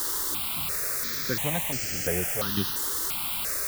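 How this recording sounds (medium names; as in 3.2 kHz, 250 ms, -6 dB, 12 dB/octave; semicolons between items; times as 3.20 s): random-step tremolo, depth 75%; a quantiser's noise floor 6-bit, dither triangular; notches that jump at a steady rate 2.9 Hz 660–3700 Hz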